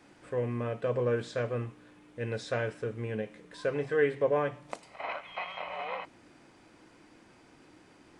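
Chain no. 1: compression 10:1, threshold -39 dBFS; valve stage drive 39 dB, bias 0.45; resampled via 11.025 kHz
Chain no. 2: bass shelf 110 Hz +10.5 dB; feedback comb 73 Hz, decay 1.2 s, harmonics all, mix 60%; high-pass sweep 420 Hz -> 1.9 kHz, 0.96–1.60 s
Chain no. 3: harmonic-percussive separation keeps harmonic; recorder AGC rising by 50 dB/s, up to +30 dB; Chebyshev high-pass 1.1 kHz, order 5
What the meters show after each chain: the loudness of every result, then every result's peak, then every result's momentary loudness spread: -48.0 LUFS, -39.0 LUFS, -39.0 LUFS; -35.5 dBFS, -20.5 dBFS, -23.0 dBFS; 14 LU, 18 LU, 17 LU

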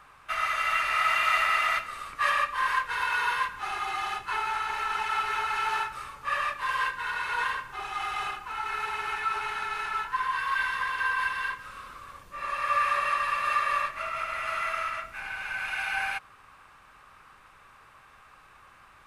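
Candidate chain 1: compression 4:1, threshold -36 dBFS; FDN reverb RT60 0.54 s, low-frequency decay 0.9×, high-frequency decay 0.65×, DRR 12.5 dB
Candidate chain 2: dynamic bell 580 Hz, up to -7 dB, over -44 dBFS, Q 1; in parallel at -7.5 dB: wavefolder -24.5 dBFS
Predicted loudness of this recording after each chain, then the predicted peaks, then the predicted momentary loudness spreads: -37.0 LUFS, -27.0 LUFS; -23.5 dBFS, -13.0 dBFS; 18 LU, 9 LU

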